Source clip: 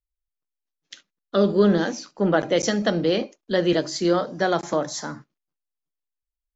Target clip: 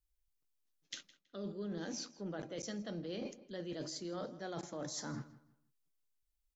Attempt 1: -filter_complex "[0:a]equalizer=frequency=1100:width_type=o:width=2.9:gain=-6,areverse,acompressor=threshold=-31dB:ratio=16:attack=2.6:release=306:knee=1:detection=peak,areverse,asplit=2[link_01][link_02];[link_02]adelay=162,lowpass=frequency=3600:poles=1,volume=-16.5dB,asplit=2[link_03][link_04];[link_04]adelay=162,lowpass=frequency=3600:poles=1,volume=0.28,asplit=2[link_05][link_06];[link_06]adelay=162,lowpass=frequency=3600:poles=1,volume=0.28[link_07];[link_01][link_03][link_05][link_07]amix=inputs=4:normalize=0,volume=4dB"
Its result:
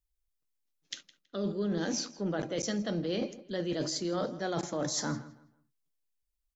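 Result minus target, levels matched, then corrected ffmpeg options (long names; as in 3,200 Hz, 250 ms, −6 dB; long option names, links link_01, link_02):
downward compressor: peak gain reduction −10 dB
-filter_complex "[0:a]equalizer=frequency=1100:width_type=o:width=2.9:gain=-6,areverse,acompressor=threshold=-41.5dB:ratio=16:attack=2.6:release=306:knee=1:detection=peak,areverse,asplit=2[link_01][link_02];[link_02]adelay=162,lowpass=frequency=3600:poles=1,volume=-16.5dB,asplit=2[link_03][link_04];[link_04]adelay=162,lowpass=frequency=3600:poles=1,volume=0.28,asplit=2[link_05][link_06];[link_06]adelay=162,lowpass=frequency=3600:poles=1,volume=0.28[link_07];[link_01][link_03][link_05][link_07]amix=inputs=4:normalize=0,volume=4dB"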